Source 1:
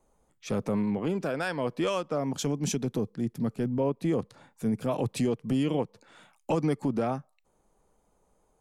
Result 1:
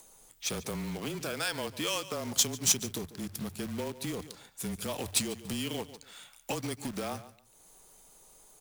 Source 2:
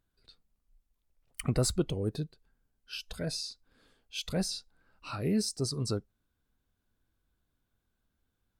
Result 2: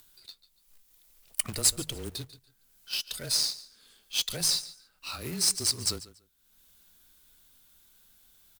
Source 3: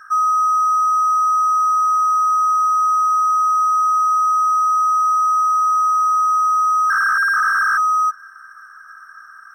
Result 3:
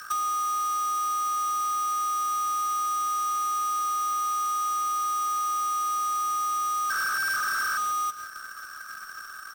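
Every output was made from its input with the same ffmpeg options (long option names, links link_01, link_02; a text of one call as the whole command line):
ffmpeg -i in.wav -af "bandreject=frequency=60:width_type=h:width=6,bandreject=frequency=120:width_type=h:width=6,bandreject=frequency=180:width_type=h:width=6,aecho=1:1:143|286:0.133|0.0253,acompressor=threshold=-26dB:ratio=6,equalizer=frequency=3700:width_type=o:width=0.86:gain=4,crystalizer=i=7.5:c=0,acrusher=bits=2:mode=log:mix=0:aa=0.000001,afreqshift=-25,acompressor=mode=upward:threshold=-40dB:ratio=2.5,volume=-7dB" out.wav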